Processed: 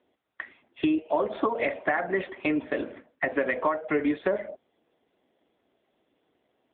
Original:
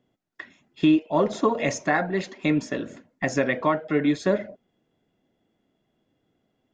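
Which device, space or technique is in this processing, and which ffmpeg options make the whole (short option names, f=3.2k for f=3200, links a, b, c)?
voicemail: -af "highpass=380,lowpass=2.9k,acompressor=threshold=-26dB:ratio=10,volume=5.5dB" -ar 8000 -c:a libopencore_amrnb -b:a 7950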